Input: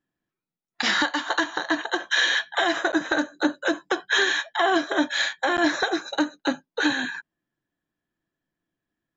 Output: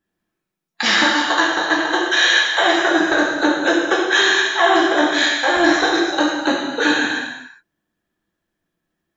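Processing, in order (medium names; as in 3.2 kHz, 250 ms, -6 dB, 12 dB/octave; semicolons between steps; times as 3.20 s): harmonic-percussive split percussive +4 dB; gated-style reverb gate 430 ms falling, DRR -4.5 dB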